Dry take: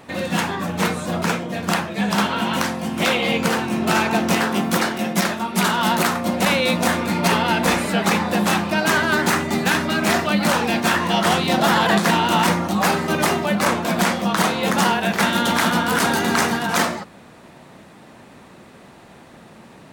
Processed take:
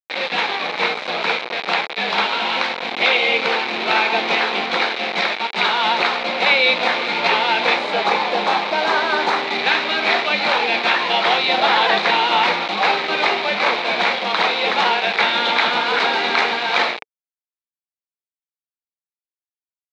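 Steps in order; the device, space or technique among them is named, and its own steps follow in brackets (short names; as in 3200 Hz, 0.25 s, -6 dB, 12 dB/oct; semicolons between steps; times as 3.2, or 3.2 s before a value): 7.77–9.47 EQ curve 180 Hz 0 dB, 1000 Hz +3 dB, 2500 Hz -8 dB, 14000 Hz +7 dB; hand-held game console (bit-crush 4-bit; speaker cabinet 450–4200 Hz, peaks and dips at 450 Hz +6 dB, 820 Hz +5 dB, 2300 Hz +10 dB, 3900 Hz +10 dB); gain -1 dB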